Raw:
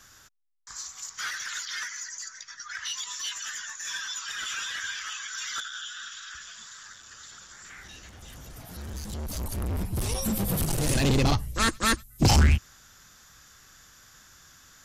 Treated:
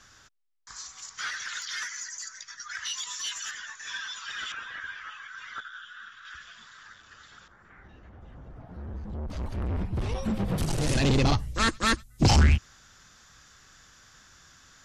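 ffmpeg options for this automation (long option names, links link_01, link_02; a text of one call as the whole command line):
ffmpeg -i in.wav -af "asetnsamples=nb_out_samples=441:pad=0,asendcmd='1.62 lowpass f 11000;3.51 lowpass f 4100;4.52 lowpass f 1700;6.25 lowpass f 3000;7.48 lowpass f 1100;9.3 lowpass f 2700;10.58 lowpass f 6600',lowpass=6000" out.wav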